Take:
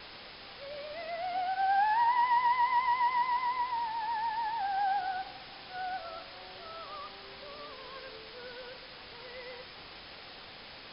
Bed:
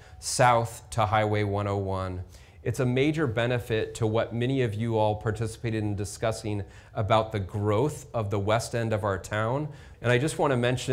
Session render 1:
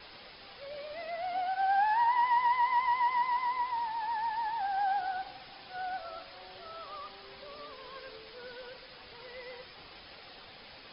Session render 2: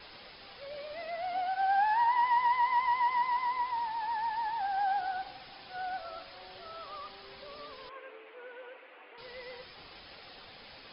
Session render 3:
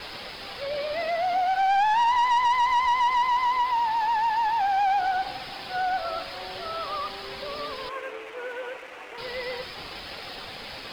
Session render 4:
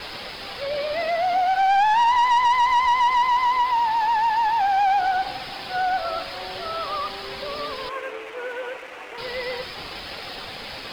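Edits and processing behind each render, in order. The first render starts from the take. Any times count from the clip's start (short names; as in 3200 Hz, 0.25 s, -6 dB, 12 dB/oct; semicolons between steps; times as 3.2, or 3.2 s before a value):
denoiser 6 dB, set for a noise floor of -49 dBFS
7.89–9.18 elliptic band-pass 310–2600 Hz
in parallel at -2 dB: compressor, threshold -36 dBFS, peak gain reduction 12 dB; on the sum: sample leveller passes 2
gain +3.5 dB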